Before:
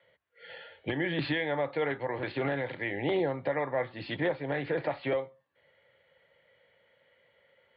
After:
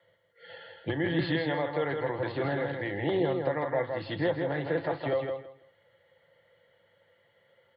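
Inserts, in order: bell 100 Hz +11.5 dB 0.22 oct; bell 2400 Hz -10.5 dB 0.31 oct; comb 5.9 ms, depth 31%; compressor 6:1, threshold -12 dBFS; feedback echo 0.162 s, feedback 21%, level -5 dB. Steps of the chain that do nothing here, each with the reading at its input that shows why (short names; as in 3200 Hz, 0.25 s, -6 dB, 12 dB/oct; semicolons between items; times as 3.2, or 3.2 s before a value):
compressor, threshold -12 dBFS: input peak -16.5 dBFS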